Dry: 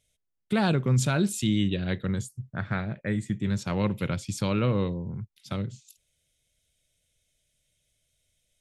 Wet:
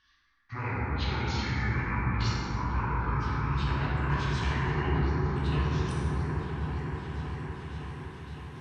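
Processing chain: gliding pitch shift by -11 st ending unshifted; band shelf 1900 Hz +10.5 dB 2.3 oct; reverse; compressor 6:1, threshold -37 dBFS, peak gain reduction 17 dB; reverse; spectral noise reduction 8 dB; repeats that get brighter 0.564 s, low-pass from 400 Hz, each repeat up 1 oct, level -3 dB; plate-style reverb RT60 4.7 s, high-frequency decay 0.25×, DRR -8.5 dB

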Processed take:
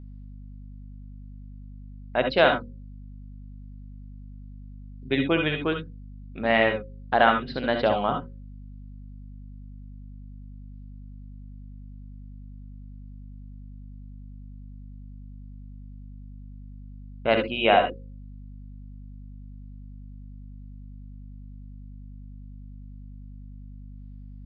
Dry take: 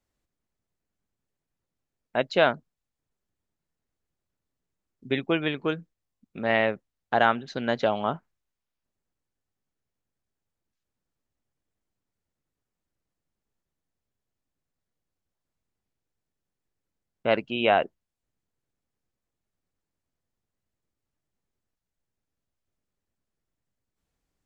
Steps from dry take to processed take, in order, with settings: notches 60/120/180/240/300/360/420/480/540 Hz; wow and flutter 17 cents; downsampling 11025 Hz; on a send at -5 dB: reverb, pre-delay 60 ms; on the sum: hum 50 Hz, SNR 11 dB; gain +1.5 dB

